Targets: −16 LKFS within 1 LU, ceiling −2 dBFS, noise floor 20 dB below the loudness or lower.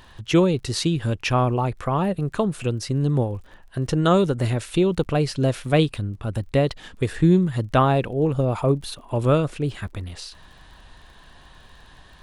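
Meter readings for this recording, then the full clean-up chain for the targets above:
crackle rate 36 per second; integrated loudness −22.5 LKFS; sample peak −6.5 dBFS; target loudness −16.0 LKFS
→ click removal
level +6.5 dB
brickwall limiter −2 dBFS

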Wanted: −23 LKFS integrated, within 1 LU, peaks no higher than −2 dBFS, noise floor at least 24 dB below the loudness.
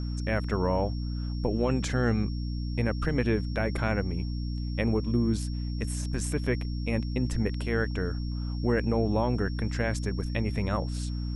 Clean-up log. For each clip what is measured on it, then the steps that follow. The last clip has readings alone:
mains hum 60 Hz; hum harmonics up to 300 Hz; level of the hum −29 dBFS; interfering tone 5,500 Hz; level of the tone −48 dBFS; integrated loudness −29.5 LKFS; sample peak −13.5 dBFS; target loudness −23.0 LKFS
→ hum removal 60 Hz, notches 5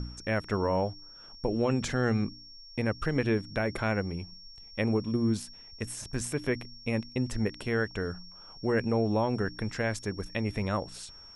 mains hum none found; interfering tone 5,500 Hz; level of the tone −48 dBFS
→ notch filter 5,500 Hz, Q 30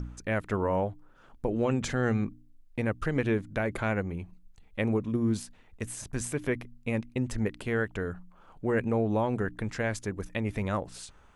interfering tone none found; integrated loudness −31.0 LKFS; sample peak −14.5 dBFS; target loudness −23.0 LKFS
→ level +8 dB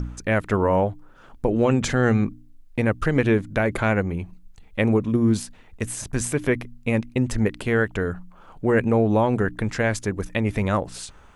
integrated loudness −23.0 LKFS; sample peak −6.5 dBFS; background noise floor −49 dBFS

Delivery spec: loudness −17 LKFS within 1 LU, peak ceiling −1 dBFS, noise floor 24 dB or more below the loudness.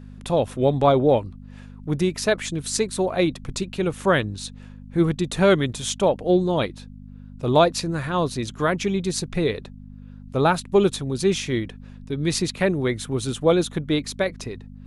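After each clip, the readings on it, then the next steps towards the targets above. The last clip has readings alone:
mains hum 50 Hz; hum harmonics up to 250 Hz; level of the hum −38 dBFS; integrated loudness −22.5 LKFS; sample peak −4.0 dBFS; target loudness −17.0 LKFS
→ hum removal 50 Hz, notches 5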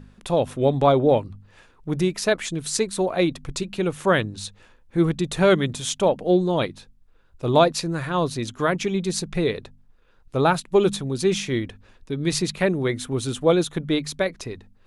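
mains hum none found; integrated loudness −23.0 LKFS; sample peak −3.5 dBFS; target loudness −17.0 LKFS
→ level +6 dB
brickwall limiter −1 dBFS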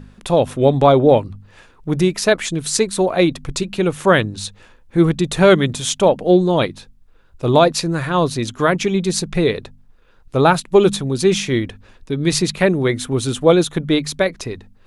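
integrated loudness −17.0 LKFS; sample peak −1.0 dBFS; background noise floor −50 dBFS

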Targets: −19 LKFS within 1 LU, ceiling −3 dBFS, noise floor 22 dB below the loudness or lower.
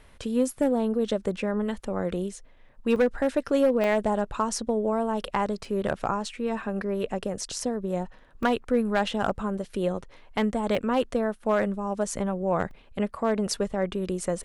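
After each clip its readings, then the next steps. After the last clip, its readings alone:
share of clipped samples 0.4%; peaks flattened at −15.0 dBFS; number of dropouts 6; longest dropout 2.1 ms; integrated loudness −27.5 LKFS; sample peak −15.0 dBFS; target loudness −19.0 LKFS
→ clipped peaks rebuilt −15 dBFS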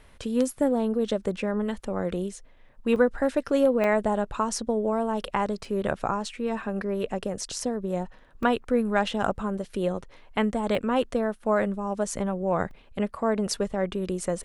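share of clipped samples 0.0%; number of dropouts 6; longest dropout 2.1 ms
→ repair the gap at 0:02.96/0:03.84/0:05.65/0:08.43/0:10.75/0:12.71, 2.1 ms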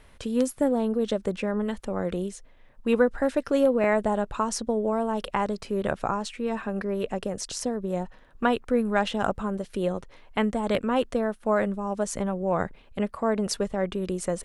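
number of dropouts 0; integrated loudness −27.5 LKFS; sample peak −8.0 dBFS; target loudness −19.0 LKFS
→ level +8.5 dB
brickwall limiter −3 dBFS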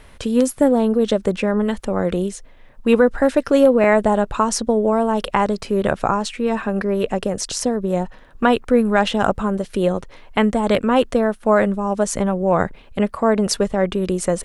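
integrated loudness −19.0 LKFS; sample peak −3.0 dBFS; background noise floor −44 dBFS

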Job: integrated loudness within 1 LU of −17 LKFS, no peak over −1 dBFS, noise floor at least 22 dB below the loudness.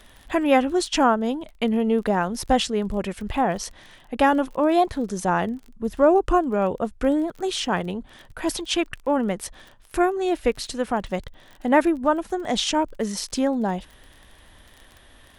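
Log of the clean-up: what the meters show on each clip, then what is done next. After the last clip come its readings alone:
crackle rate 29 per second; integrated loudness −23.5 LKFS; sample peak −5.0 dBFS; target loudness −17.0 LKFS
→ click removal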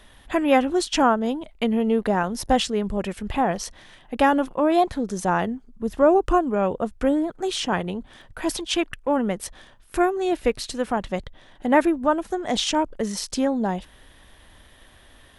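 crackle rate 0.13 per second; integrated loudness −23.5 LKFS; sample peak −5.0 dBFS; target loudness −17.0 LKFS
→ level +6.5 dB
brickwall limiter −1 dBFS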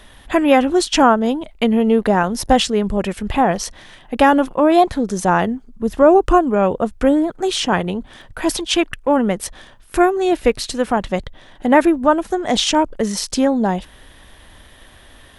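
integrated loudness −17.0 LKFS; sample peak −1.0 dBFS; background noise floor −46 dBFS

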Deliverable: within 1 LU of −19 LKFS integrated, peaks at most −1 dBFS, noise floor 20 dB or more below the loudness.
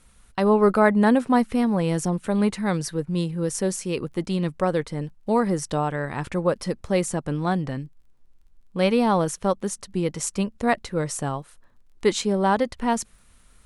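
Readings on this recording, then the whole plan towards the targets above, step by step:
crackle rate 20 per second; integrated loudness −24.0 LKFS; sample peak −5.0 dBFS; target loudness −19.0 LKFS
→ click removal
level +5 dB
brickwall limiter −1 dBFS

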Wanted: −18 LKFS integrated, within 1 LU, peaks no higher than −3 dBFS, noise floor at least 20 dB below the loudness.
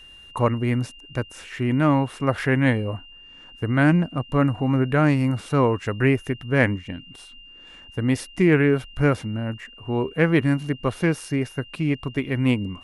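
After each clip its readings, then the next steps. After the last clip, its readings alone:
interfering tone 2,800 Hz; level of the tone −44 dBFS; integrated loudness −22.5 LKFS; sample peak −4.5 dBFS; target loudness −18.0 LKFS
→ notch filter 2,800 Hz, Q 30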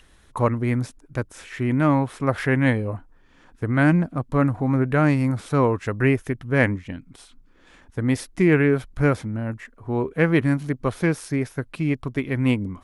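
interfering tone none found; integrated loudness −22.5 LKFS; sample peak −4.5 dBFS; target loudness −18.0 LKFS
→ level +4.5 dB
brickwall limiter −3 dBFS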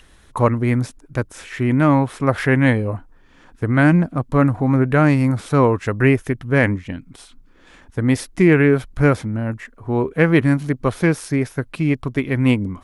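integrated loudness −18.5 LKFS; sample peak −3.0 dBFS; background noise floor −50 dBFS

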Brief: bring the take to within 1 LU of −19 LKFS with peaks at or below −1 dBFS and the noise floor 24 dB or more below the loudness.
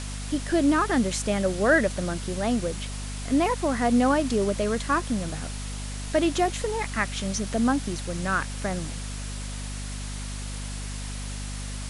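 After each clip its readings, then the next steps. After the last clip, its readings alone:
mains hum 50 Hz; hum harmonics up to 250 Hz; level of the hum −32 dBFS; background noise floor −34 dBFS; target noise floor −51 dBFS; integrated loudness −26.5 LKFS; sample peak −8.5 dBFS; target loudness −19.0 LKFS
→ hum removal 50 Hz, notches 5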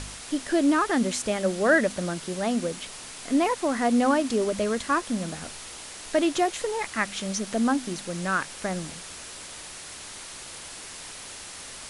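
mains hum none found; background noise floor −41 dBFS; target noise floor −50 dBFS
→ broadband denoise 9 dB, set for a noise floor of −41 dBFS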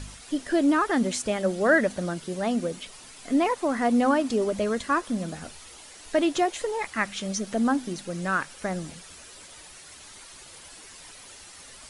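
background noise floor −47 dBFS; target noise floor −50 dBFS
→ broadband denoise 6 dB, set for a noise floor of −47 dBFS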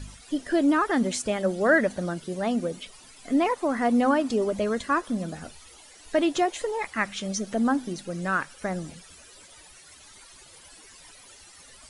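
background noise floor −51 dBFS; integrated loudness −26.0 LKFS; sample peak −9.0 dBFS; target loudness −19.0 LKFS
→ level +7 dB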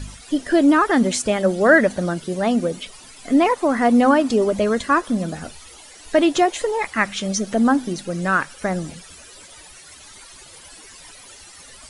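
integrated loudness −19.0 LKFS; sample peak −2.0 dBFS; background noise floor −44 dBFS

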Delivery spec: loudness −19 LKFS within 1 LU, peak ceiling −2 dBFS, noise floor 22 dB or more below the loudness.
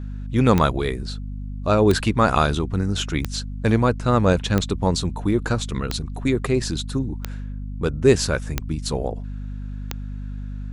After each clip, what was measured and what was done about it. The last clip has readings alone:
number of clicks 8; mains hum 50 Hz; hum harmonics up to 250 Hz; level of the hum −28 dBFS; integrated loudness −22.0 LKFS; sample peak −1.0 dBFS; target loudness −19.0 LKFS
→ click removal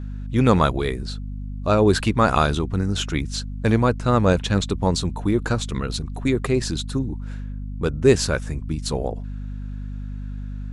number of clicks 0; mains hum 50 Hz; hum harmonics up to 250 Hz; level of the hum −28 dBFS
→ hum removal 50 Hz, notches 5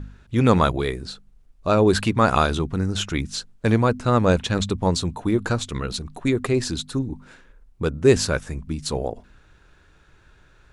mains hum none found; integrated loudness −22.5 LKFS; sample peak −1.5 dBFS; target loudness −19.0 LKFS
→ level +3.5 dB
brickwall limiter −2 dBFS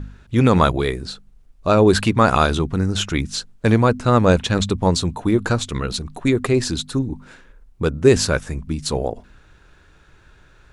integrated loudness −19.0 LKFS; sample peak −2.0 dBFS; background noise floor −52 dBFS

